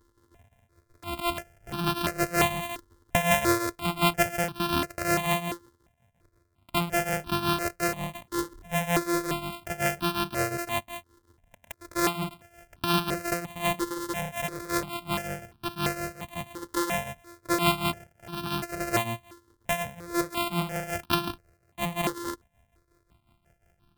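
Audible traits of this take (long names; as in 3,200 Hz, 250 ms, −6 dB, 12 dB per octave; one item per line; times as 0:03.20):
a buzz of ramps at a fixed pitch in blocks of 128 samples
tremolo triangle 5.5 Hz, depth 80%
notches that jump at a steady rate 2.9 Hz 680–2,000 Hz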